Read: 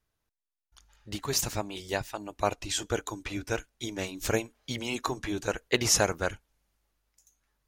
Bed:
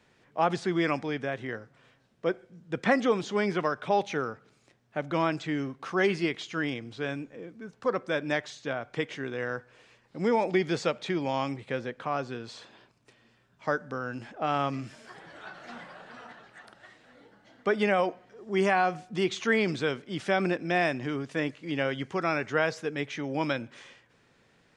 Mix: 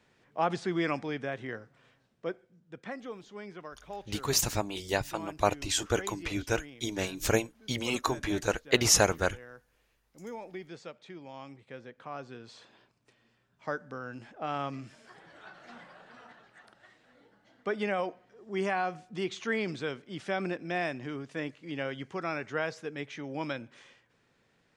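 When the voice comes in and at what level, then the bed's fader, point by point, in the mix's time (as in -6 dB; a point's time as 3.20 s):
3.00 s, +1.5 dB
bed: 2.01 s -3 dB
2.91 s -16.5 dB
11.29 s -16.5 dB
12.69 s -6 dB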